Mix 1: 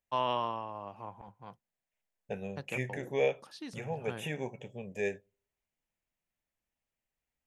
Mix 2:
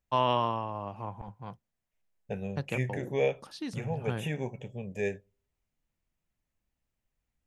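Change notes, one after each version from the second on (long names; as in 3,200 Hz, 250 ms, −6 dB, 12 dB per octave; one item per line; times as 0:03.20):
first voice +4.0 dB
master: add low-shelf EQ 160 Hz +11.5 dB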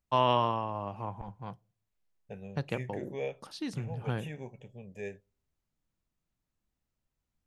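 first voice: send on
second voice −8.5 dB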